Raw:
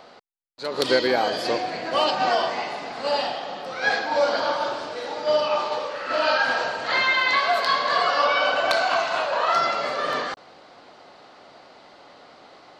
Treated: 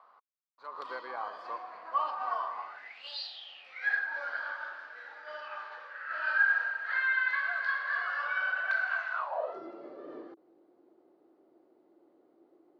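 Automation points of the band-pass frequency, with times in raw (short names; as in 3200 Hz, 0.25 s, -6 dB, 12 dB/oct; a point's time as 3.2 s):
band-pass, Q 8.8
2.64 s 1100 Hz
3.21 s 4400 Hz
3.99 s 1600 Hz
9.11 s 1600 Hz
9.61 s 340 Hz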